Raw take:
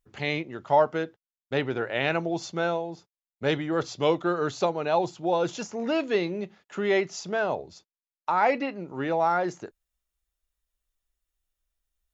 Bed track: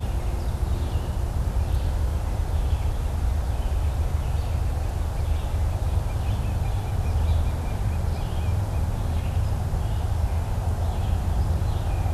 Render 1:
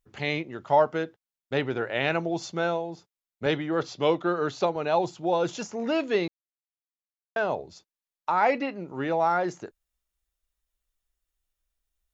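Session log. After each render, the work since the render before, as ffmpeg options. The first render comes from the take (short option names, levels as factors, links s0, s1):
-filter_complex "[0:a]asettb=1/sr,asplit=3[s0][s1][s2];[s0]atrim=end=3.464[s3];[s1]atrim=start=3.46:end=4.76,asetpts=PTS-STARTPTS,afade=t=in:d=0.004:c=qsin,afade=t=out:st=1.296:d=0.004:c=qsin,highpass=120,lowpass=5700[s4];[s2]atrim=start=4.756[s5];[s3][s4]acrossfade=d=0.004:c1=hsin:c2=qsin[s6];[s6][s5]acrossfade=d=0.004:c1=qsin:c2=hsin,asplit=3[s7][s8][s9];[s7]atrim=end=6.28,asetpts=PTS-STARTPTS,afade=t=out:st=6.276:d=0.004:c=hsin[s10];[s8]atrim=start=6.28:end=7.36,asetpts=PTS-STARTPTS,volume=0[s11];[s9]atrim=start=7.36,asetpts=PTS-STARTPTS,afade=t=in:d=0.004:c=hsin[s12];[s10][s11][s12]concat=n=3:v=0:a=1"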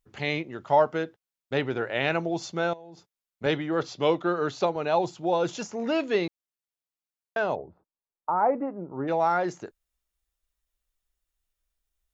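-filter_complex "[0:a]asettb=1/sr,asplit=3[s0][s1][s2];[s0]atrim=end=2.734[s3];[s1]atrim=start=2.73:end=3.44,asetpts=PTS-STARTPTS,afade=t=in:d=0.004:c=qsin,afade=t=out:st=0.706:d=0.004:c=qsin,acompressor=threshold=0.00891:ratio=8:attack=3.2:release=140:knee=1:detection=peak[s4];[s2]atrim=start=3.436[s5];[s3][s4]acrossfade=d=0.004:c1=hsin:c2=qsin[s6];[s6][s5]acrossfade=d=0.004:c1=qsin:c2=hsin,asplit=3[s7][s8][s9];[s7]afade=t=out:st=7.55:d=0.02[s10];[s8]lowpass=f=1200:w=0.5412,lowpass=f=1200:w=1.3066,afade=t=in:st=7.55:d=0.02,afade=t=out:st=9.07:d=0.02[s11];[s9]afade=t=in:st=9.07:d=0.02[s12];[s10][s11][s12]amix=inputs=3:normalize=0"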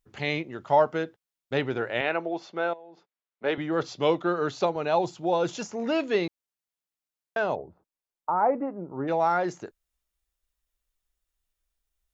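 -filter_complex "[0:a]asettb=1/sr,asplit=3[s0][s1][s2];[s0]atrim=end=2.014[s3];[s1]atrim=start=2.01:end=3.58,asetpts=PTS-STARTPTS,afade=t=in:d=0.004:c=qsin,afade=t=out:st=1.566:d=0.004:c=qsin,highpass=330,lowpass=2800[s4];[s2]atrim=start=3.576[s5];[s3][s4]acrossfade=d=0.004:c1=hsin:c2=qsin[s6];[s6][s5]acrossfade=d=0.004:c1=qsin:c2=hsin"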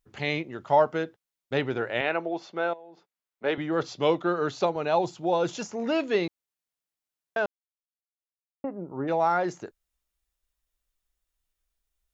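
-filter_complex "[0:a]asplit=3[s0][s1][s2];[s0]atrim=end=7.46,asetpts=PTS-STARTPTS,afade=t=out:st=7.456:d=0.004:c=hsin[s3];[s1]atrim=start=7.46:end=8.64,asetpts=PTS-STARTPTS,volume=0[s4];[s2]atrim=start=8.64,asetpts=PTS-STARTPTS,afade=t=in:d=0.004:c=hsin[s5];[s3][s4][s5]concat=n=3:v=0:a=1"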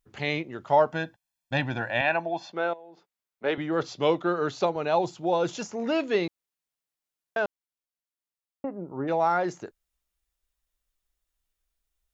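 -filter_complex "[0:a]asettb=1/sr,asplit=3[s0][s1][s2];[s0]atrim=end=0.924[s3];[s1]atrim=start=0.92:end=2.52,asetpts=PTS-STARTPTS,afade=t=in:d=0.004:c=qsin,afade=t=out:st=1.596:d=0.004:c=qsin,aecho=1:1:1.2:0.9,atrim=end_sample=70560[s4];[s2]atrim=start=2.516[s5];[s3][s4]acrossfade=d=0.004:c1=hsin:c2=qsin[s6];[s6][s5]acrossfade=d=0.004:c1=qsin:c2=hsin"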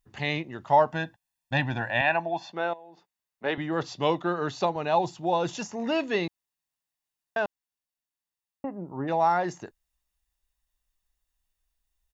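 -af "aecho=1:1:1.1:0.35"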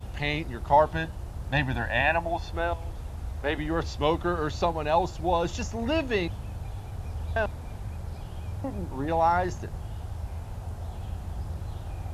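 -filter_complex "[1:a]volume=0.282[s0];[0:a][s0]amix=inputs=2:normalize=0"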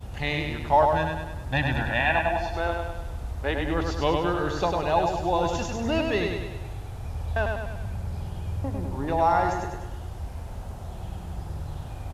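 -af "aecho=1:1:100|200|300|400|500|600|700:0.631|0.341|0.184|0.0994|0.0537|0.029|0.0156"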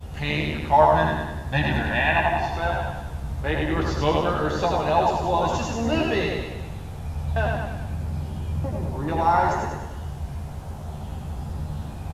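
-filter_complex "[0:a]asplit=2[s0][s1];[s1]adelay=13,volume=0.631[s2];[s0][s2]amix=inputs=2:normalize=0,asplit=5[s3][s4][s5][s6][s7];[s4]adelay=80,afreqshift=65,volume=0.447[s8];[s5]adelay=160,afreqshift=130,volume=0.151[s9];[s6]adelay=240,afreqshift=195,volume=0.0519[s10];[s7]adelay=320,afreqshift=260,volume=0.0176[s11];[s3][s8][s9][s10][s11]amix=inputs=5:normalize=0"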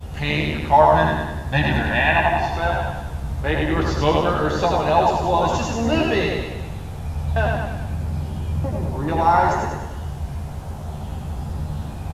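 -af "volume=1.5,alimiter=limit=0.708:level=0:latency=1"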